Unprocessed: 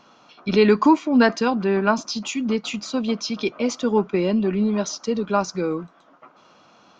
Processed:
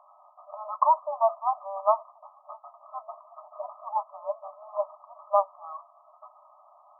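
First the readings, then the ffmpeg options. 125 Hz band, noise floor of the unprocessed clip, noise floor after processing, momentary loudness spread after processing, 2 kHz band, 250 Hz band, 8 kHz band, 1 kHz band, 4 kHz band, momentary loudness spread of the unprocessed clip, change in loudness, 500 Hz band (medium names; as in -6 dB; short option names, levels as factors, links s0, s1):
under -40 dB, -54 dBFS, -58 dBFS, 22 LU, under -40 dB, under -40 dB, no reading, -0.5 dB, under -40 dB, 9 LU, -7.0 dB, -9.0 dB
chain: -af "afftfilt=real='re*between(b*sr/4096,580,1300)':imag='im*between(b*sr/4096,580,1300)':win_size=4096:overlap=0.75"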